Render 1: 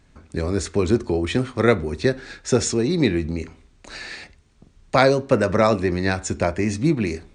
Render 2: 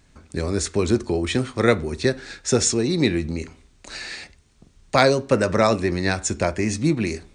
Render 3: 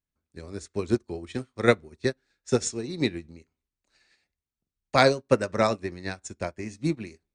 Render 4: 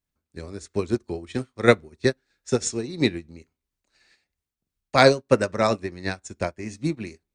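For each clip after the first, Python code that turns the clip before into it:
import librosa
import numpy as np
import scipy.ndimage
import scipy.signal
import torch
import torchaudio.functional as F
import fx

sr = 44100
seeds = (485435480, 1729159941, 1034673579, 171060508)

y1 = fx.high_shelf(x, sr, hz=4000.0, db=7.5)
y1 = F.gain(torch.from_numpy(y1), -1.0).numpy()
y2 = fx.upward_expand(y1, sr, threshold_db=-36.0, expansion=2.5)
y3 = fx.tremolo_shape(y2, sr, shape='triangle', hz=3.0, depth_pct=55)
y3 = F.gain(torch.from_numpy(y3), 5.5).numpy()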